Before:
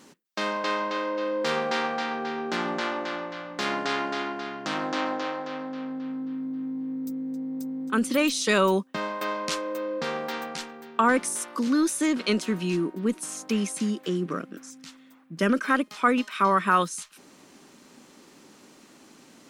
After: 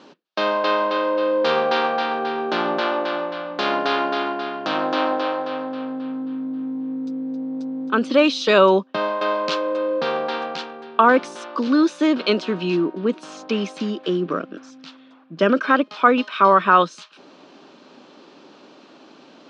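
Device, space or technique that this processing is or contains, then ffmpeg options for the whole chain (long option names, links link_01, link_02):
kitchen radio: -af "highpass=210,equalizer=frequency=220:width_type=q:width=4:gain=-4,equalizer=frequency=620:width_type=q:width=4:gain=4,equalizer=frequency=2000:width_type=q:width=4:gain=-9,lowpass=frequency=4300:width=0.5412,lowpass=frequency=4300:width=1.3066,volume=7.5dB"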